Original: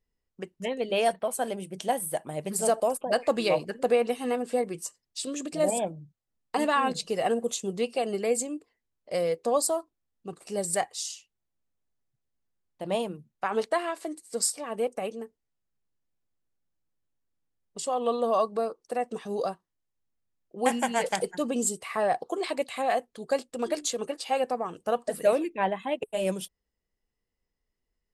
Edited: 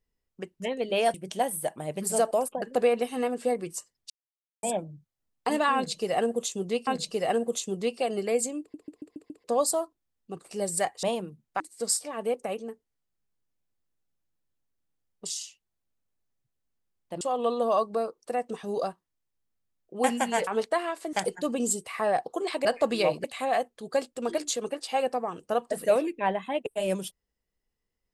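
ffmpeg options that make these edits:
-filter_complex "[0:a]asplit=20[a][b][c][d][e][f][g][h][i][j][k][l][m][n][o][p][q][r][s][t];[a]atrim=end=1.142[u];[b]atrim=start=1.628:end=3.112[v];[c]atrim=start=3.698:end=5.18,asetpts=PTS-STARTPTS,afade=t=out:st=1.478:d=0.004:c=hsin[w];[d]atrim=start=5.18:end=5.71,asetpts=PTS-STARTPTS,volume=0[x];[e]atrim=start=5.71:end=7.952,asetpts=PTS-STARTPTS,afade=t=in:d=0.004:c=hsin[y];[f]atrim=start=6.828:end=8.702[z];[g]atrim=start=8.558:end=8.702[aa];[h]atrim=start=8.558:end=8.702[ab];[i]atrim=start=8.558:end=8.702[ac];[j]atrim=start=8.558:end=8.702[ad];[k]atrim=start=8.558:end=8.702[ae];[l]atrim=start=9.398:end=10.992[af];[m]atrim=start=12.898:end=13.472[ag];[n]atrim=start=14.128:end=17.832[ah];[o]atrim=start=10.988:end=12.902[ai];[p]atrim=start=17.828:end=21.092[aj];[q]atrim=start=13.468:end=14.132[ak];[r]atrim=start=21.088:end=22.612[al];[s]atrim=start=3.108:end=3.702[am];[t]atrim=start=22.608[an];[u][v]acrossfade=d=0.004:c1=hsin:c2=hsin[ao];[w][x][y]concat=n=3:v=0:a=1[ap];[ao][ap]acrossfade=d=0.004:c1=hsin:c2=hsin[aq];[aq][z]acrossfade=d=0.004:c1=hsin:c2=hsin[ar];[ar][aa]acrossfade=d=0.004:c1=hsin:c2=hsin[as];[as][ab]acrossfade=d=0.004:c1=hsin:c2=hsin[at];[at][ac]acrossfade=d=0.004:c1=hsin:c2=hsin[au];[au][ad]acrossfade=d=0.004:c1=hsin:c2=hsin[av];[av][ae]acrossfade=d=0.004:c1=hsin:c2=hsin[aw];[aw][af]acrossfade=d=0.004:c1=hsin:c2=hsin[ax];[ax][ag]acrossfade=d=0.004:c1=hsin:c2=hsin[ay];[ay][ah]acrossfade=d=0.004:c1=hsin:c2=hsin[az];[az][ai]acrossfade=d=0.004:c1=hsin:c2=hsin[ba];[ba][aj]acrossfade=d=0.004:c1=hsin:c2=hsin[bb];[bb][ak]acrossfade=d=0.004:c1=hsin:c2=hsin[bc];[bc][al]acrossfade=d=0.004:c1=hsin:c2=hsin[bd];[bd][am]acrossfade=d=0.004:c1=hsin:c2=hsin[be];[be][an]acrossfade=d=0.004:c1=hsin:c2=hsin"

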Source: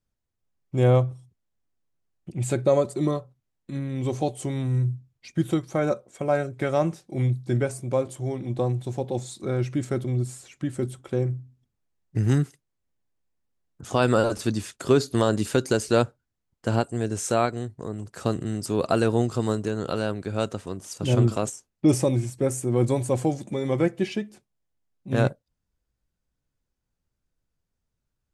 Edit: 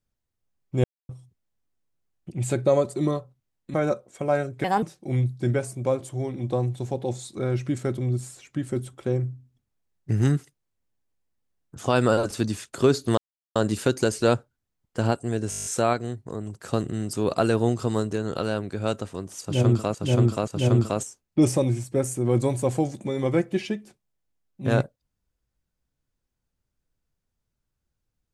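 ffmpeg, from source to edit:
-filter_complex "[0:a]asplit=17[a][b][c][d][e][f][g][h][i][j][k][l][m][n][o][p][q];[a]atrim=end=0.84,asetpts=PTS-STARTPTS,afade=t=out:st=0.836:d=0.004:c=hsin[r];[b]atrim=start=0.84:end=1.09,asetpts=PTS-STARTPTS,volume=0[s];[c]atrim=start=1.09:end=3.742,asetpts=PTS-STARTPTS,afade=t=in:d=0.004:c=hsin[t];[d]atrim=start=5.738:end=6.644[u];[e]atrim=start=6.64:end=6.89,asetpts=PTS-STARTPTS,asetrate=59535,aresample=44100[v];[f]atrim=start=6.886:end=15.24,asetpts=PTS-STARTPTS,afade=t=out:st=8.35:d=0.004:c=hsin,apad=pad_dur=0.38[w];[g]atrim=start=15.24:end=17.202,asetpts=PTS-STARTPTS,afade=t=in:d=0.004:c=hsin[x];[h]atrim=start=17.178:end=17.202[y];[i]atrim=start=17.178:end=17.202[z];[j]atrim=start=17.178:end=17.202[aa];[k]atrim=start=17.178:end=17.202[ab];[l]atrim=start=17.178:end=17.202[ac];[m]atrim=start=17.178:end=17.202[ad];[n]atrim=start=17.178:end=17.202[ae];[o]atrim=start=17.178:end=21.472[af];[p]atrim=start=20.938:end=21.472[ag];[q]atrim=start=20.938[ah];[r][s][t]concat=n=3:v=0:a=1[ai];[ai][u]acrossfade=d=0.004:c1=hsin:c2=hsin[aj];[aj][v]acrossfade=d=0.004:c1=hsin:c2=hsin[ak];[w][x]concat=n=2:v=0:a=1[al];[ak][al]acrossfade=d=0.004:c1=hsin:c2=hsin[am];[am][y]acrossfade=d=0.004:c1=hsin:c2=hsin[an];[an][z]acrossfade=d=0.004:c1=hsin:c2=hsin[ao];[ao][aa]acrossfade=d=0.004:c1=hsin:c2=hsin[ap];[ap][ab]acrossfade=d=0.004:c1=hsin:c2=hsin[aq];[aq][ac]acrossfade=d=0.004:c1=hsin:c2=hsin[ar];[ar][ad]acrossfade=d=0.004:c1=hsin:c2=hsin[as];[as][ae]acrossfade=d=0.004:c1=hsin:c2=hsin[at];[at][af]acrossfade=d=0.004:c1=hsin:c2=hsin[au];[au][ag]acrossfade=d=0.004:c1=hsin:c2=hsin[av];[av][ah]acrossfade=d=0.004:c1=hsin:c2=hsin"

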